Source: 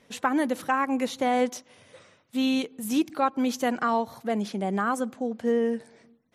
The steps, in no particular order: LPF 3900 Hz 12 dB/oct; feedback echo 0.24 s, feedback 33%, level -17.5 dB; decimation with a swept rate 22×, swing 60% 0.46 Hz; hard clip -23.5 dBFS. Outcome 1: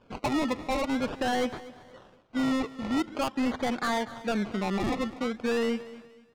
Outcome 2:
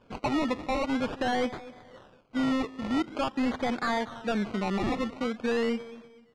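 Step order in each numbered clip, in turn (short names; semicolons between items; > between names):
decimation with a swept rate > LPF > hard clip > feedback echo; hard clip > feedback echo > decimation with a swept rate > LPF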